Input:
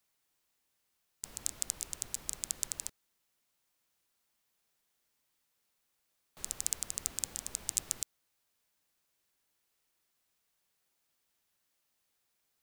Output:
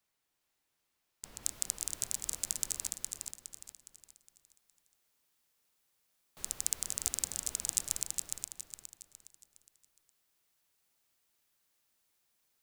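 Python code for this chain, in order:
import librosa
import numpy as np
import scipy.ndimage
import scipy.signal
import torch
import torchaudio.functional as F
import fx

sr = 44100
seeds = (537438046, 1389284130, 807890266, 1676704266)

y = fx.high_shelf(x, sr, hz=5500.0, db=fx.steps((0.0, -4.5), (1.42, 2.5)))
y = fx.echo_feedback(y, sr, ms=413, feedback_pct=39, wet_db=-4)
y = y * 10.0 ** (-1.0 / 20.0)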